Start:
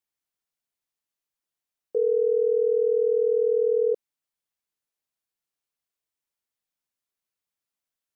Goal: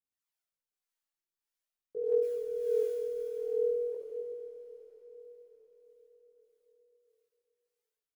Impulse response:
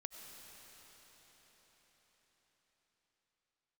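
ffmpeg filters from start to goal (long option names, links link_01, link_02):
-filter_complex "[0:a]lowshelf=frequency=330:gain=-5.5,asettb=1/sr,asplit=3[link_01][link_02][link_03];[link_01]atrim=end=2.224[link_04];[link_02]atrim=start=2.22:end=3.21,asetpts=PTS-STARTPTS,afade=type=in:duration=0.004:curve=qsin,afade=type=out:start_time=0.986:duration=0.004:curve=qsin,acrusher=bits=7:mix=0:aa=0.5[link_05];[link_03]atrim=start=3.206[link_06];[link_04][link_05]acrossfade=duration=0.004:curve1=hsin:curve2=qsin[link_07];[link_07][link_06]acrossfade=duration=0.004:curve1=qsin:curve2=hsin,aecho=1:1:70|154|254.8|375.8|520.9:0.631|0.398|0.251|0.158|0.1,aphaser=in_gain=1:out_gain=1:delay=3.6:decay=0.52:speed=0.47:type=triangular,acrossover=split=450[link_08][link_09];[link_08]aeval=exprs='val(0)*(1-0.7/2+0.7/2*cos(2*PI*1.6*n/s))':channel_layout=same[link_10];[link_09]aeval=exprs='val(0)*(1-0.7/2-0.7/2*cos(2*PI*1.6*n/s))':channel_layout=same[link_11];[link_10][link_11]amix=inputs=2:normalize=0,asplit=2[link_12][link_13];[1:a]atrim=start_sample=2205,adelay=19[link_14];[link_13][link_14]afir=irnorm=-1:irlink=0,volume=5dB[link_15];[link_12][link_15]amix=inputs=2:normalize=0,volume=-8.5dB"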